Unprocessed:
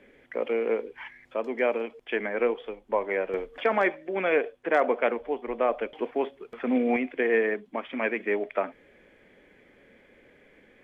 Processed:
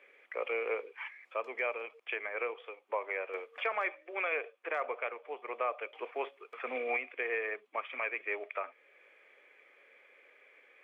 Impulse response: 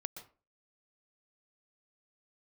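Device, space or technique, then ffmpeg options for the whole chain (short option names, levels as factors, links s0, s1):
laptop speaker: -af "highpass=f=440:w=0.5412,highpass=f=440:w=1.3066,equalizer=f=1200:t=o:w=0.29:g=10,equalizer=f=2400:t=o:w=0.43:g=10,alimiter=limit=0.15:level=0:latency=1:release=479,volume=0.473"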